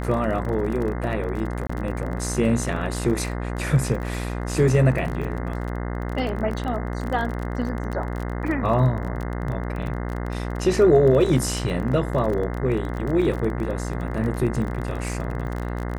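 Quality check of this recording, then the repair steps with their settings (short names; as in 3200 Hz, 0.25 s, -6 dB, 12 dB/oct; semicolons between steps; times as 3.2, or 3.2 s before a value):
buzz 60 Hz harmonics 35 -28 dBFS
crackle 30/s -28 dBFS
1.67–1.7 gap 25 ms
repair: de-click; de-hum 60 Hz, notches 35; interpolate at 1.67, 25 ms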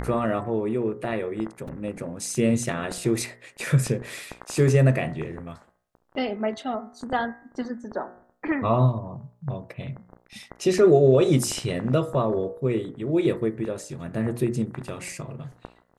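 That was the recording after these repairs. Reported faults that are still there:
none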